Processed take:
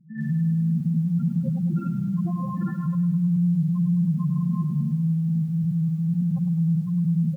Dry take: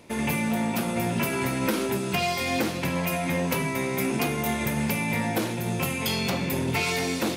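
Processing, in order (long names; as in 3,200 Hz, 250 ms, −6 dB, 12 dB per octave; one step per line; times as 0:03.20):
low shelf with overshoot 280 Hz +10 dB, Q 3
notch filter 1,200 Hz, Q 20
stiff-string resonator 160 Hz, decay 0.28 s, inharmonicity 0.03
repeating echo 503 ms, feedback 54%, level −3.5 dB
auto-filter low-pass sine 1.2 Hz 750–1,700 Hz
in parallel at −3.5 dB: bit reduction 5 bits
on the sum: gate on every frequency bin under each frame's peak −10 dB strong
brickwall limiter −21.5 dBFS, peak gain reduction 13.5 dB
head-to-tape spacing loss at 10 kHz 42 dB
feedback echo at a low word length 103 ms, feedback 55%, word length 9 bits, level −11 dB
level +2.5 dB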